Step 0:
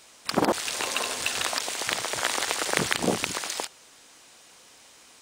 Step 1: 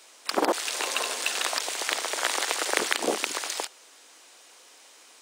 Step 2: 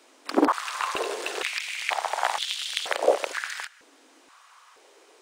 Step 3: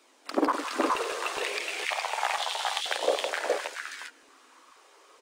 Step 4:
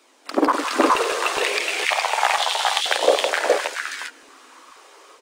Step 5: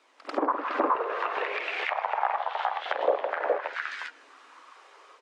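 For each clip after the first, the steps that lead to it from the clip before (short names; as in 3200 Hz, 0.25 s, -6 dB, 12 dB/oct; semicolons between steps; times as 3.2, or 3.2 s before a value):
HPF 300 Hz 24 dB/oct
high shelf 2900 Hz -10 dB; stepped high-pass 2.1 Hz 270–3300 Hz
flange 0.64 Hz, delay 0.8 ms, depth 1.8 ms, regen +67%; on a send: tapped delay 50/165/417/429 ms -12/-11/-3/-8 dB
AGC gain up to 5 dB; gain +4.5 dB
band-pass 1300 Hz, Q 0.54; treble ducked by the level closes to 1100 Hz, closed at -18.5 dBFS; pre-echo 93 ms -14 dB; gain -4 dB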